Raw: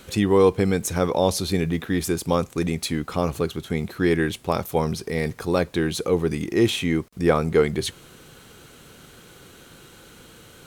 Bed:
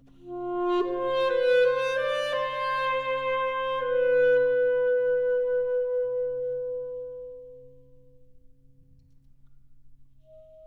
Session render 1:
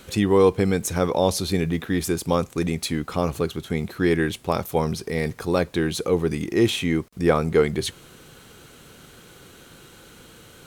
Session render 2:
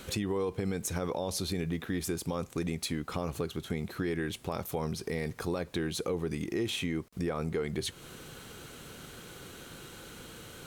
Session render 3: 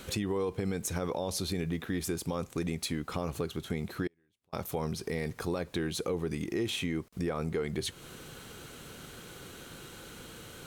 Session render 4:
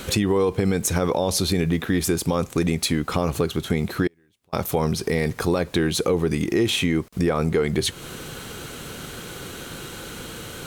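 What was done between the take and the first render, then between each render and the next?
no processing that can be heard
brickwall limiter −13.5 dBFS, peak gain reduction 8 dB; downward compressor 2.5 to 1, threshold −34 dBFS, peak gain reduction 11 dB
0:04.07–0:04.53: gate with flip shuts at −37 dBFS, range −39 dB
level +11.5 dB

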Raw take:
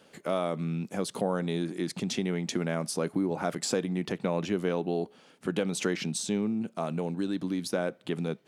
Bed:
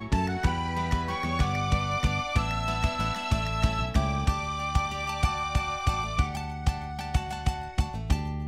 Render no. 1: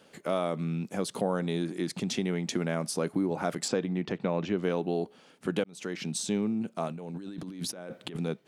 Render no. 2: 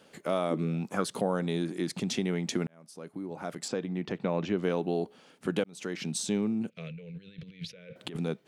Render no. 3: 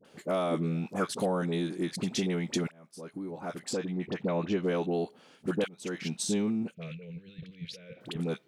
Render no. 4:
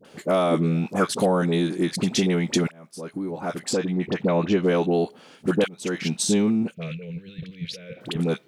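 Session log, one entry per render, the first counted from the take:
0:03.68–0:04.63: high-frequency loss of the air 110 metres; 0:05.64–0:06.19: fade in; 0:06.88–0:08.17: compressor whose output falls as the input rises −39 dBFS
0:00.50–0:01.07: parametric band 270 Hz → 1,700 Hz +14.5 dB 0.52 octaves; 0:02.67–0:04.39: fade in; 0:06.70–0:07.96: drawn EQ curve 160 Hz 0 dB, 310 Hz −25 dB, 480 Hz −1 dB, 790 Hz −29 dB, 1,200 Hz −18 dB, 2,300 Hz +6 dB, 3,800 Hz −2 dB, 9,200 Hz −24 dB
all-pass dispersion highs, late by 49 ms, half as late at 1,000 Hz
level +8.5 dB

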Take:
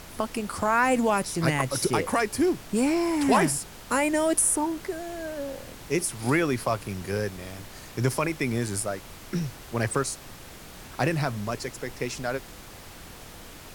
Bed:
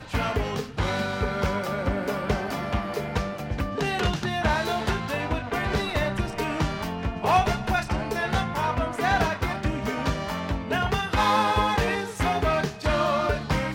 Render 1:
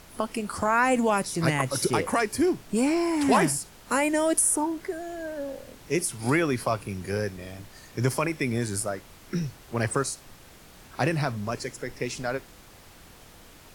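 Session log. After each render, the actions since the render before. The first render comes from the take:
noise reduction from a noise print 6 dB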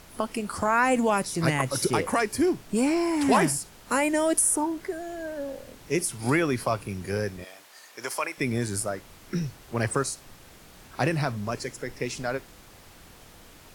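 0:07.44–0:08.38: high-pass filter 660 Hz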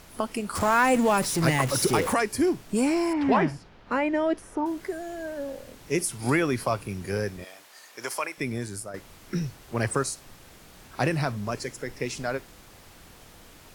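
0:00.55–0:02.14: converter with a step at zero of −29 dBFS
0:03.13–0:04.66: high-frequency loss of the air 270 metres
0:08.09–0:08.94: fade out, to −9.5 dB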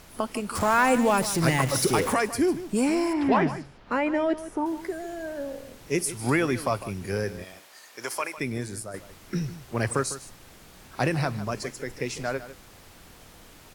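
single-tap delay 152 ms −14 dB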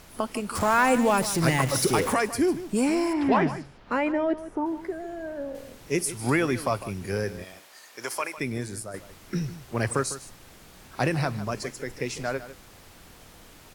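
0:04.12–0:05.55: high-shelf EQ 2,900 Hz −11.5 dB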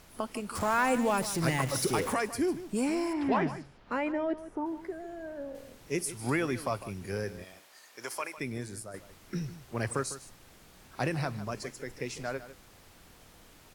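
level −6 dB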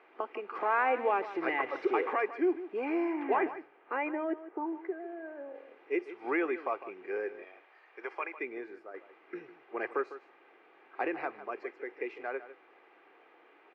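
elliptic band-pass filter 340–2,400 Hz, stop band 70 dB
comb filter 2.5 ms, depth 35%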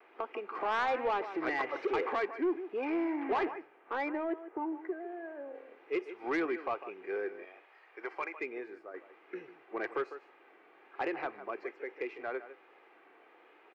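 soft clipping −24.5 dBFS, distortion −15 dB
pitch vibrato 1.2 Hz 56 cents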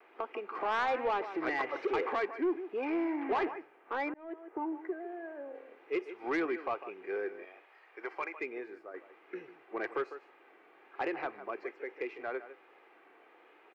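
0:04.14–0:04.56: fade in

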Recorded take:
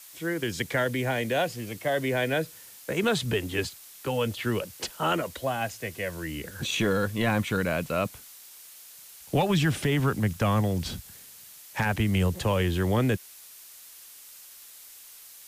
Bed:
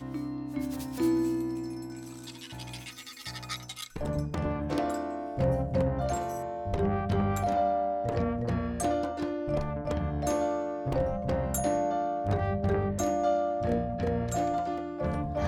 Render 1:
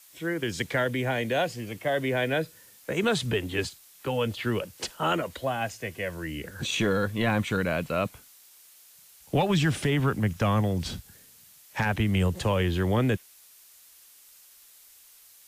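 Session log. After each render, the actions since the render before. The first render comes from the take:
noise reduction from a noise print 6 dB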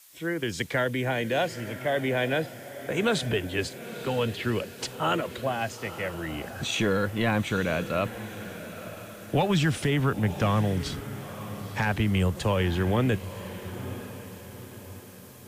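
feedback delay with all-pass diffusion 945 ms, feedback 46%, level −12.5 dB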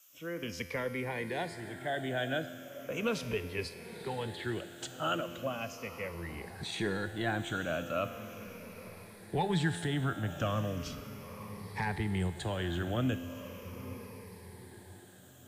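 rippled gain that drifts along the octave scale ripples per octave 0.87, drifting −0.38 Hz, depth 11 dB
tuned comb filter 86 Hz, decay 1.9 s, harmonics all, mix 70%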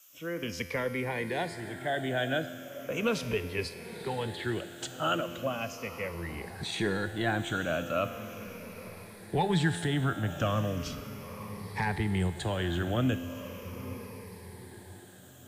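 level +3.5 dB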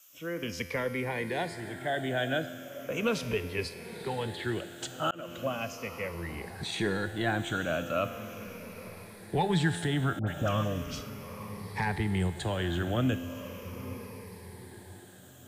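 0:05.11–0:05.51: fade in equal-power
0:10.19–0:11.10: all-pass dispersion highs, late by 82 ms, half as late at 1,300 Hz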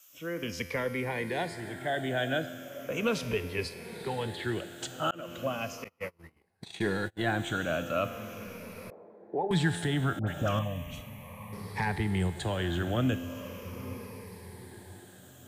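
0:05.84–0:07.32: noise gate −35 dBFS, range −34 dB
0:08.90–0:09.51: flat-topped band-pass 480 Hz, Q 0.92
0:10.59–0:11.53: phaser with its sweep stopped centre 1,400 Hz, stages 6

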